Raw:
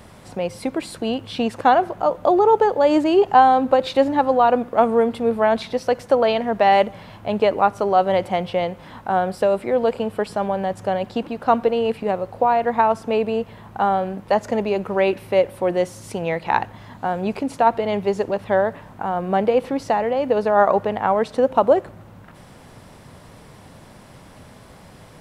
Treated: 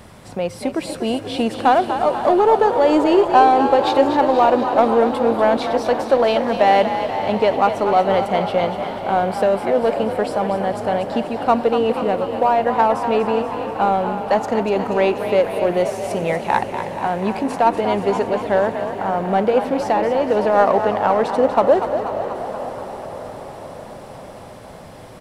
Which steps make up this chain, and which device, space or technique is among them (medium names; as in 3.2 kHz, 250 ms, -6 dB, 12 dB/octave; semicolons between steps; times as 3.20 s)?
parallel distortion (in parallel at -8 dB: hard clipper -17 dBFS, distortion -8 dB); on the sum: frequency-shifting echo 241 ms, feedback 62%, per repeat +45 Hz, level -9.5 dB; echo that smears into a reverb 512 ms, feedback 69%, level -13 dB; trim -1 dB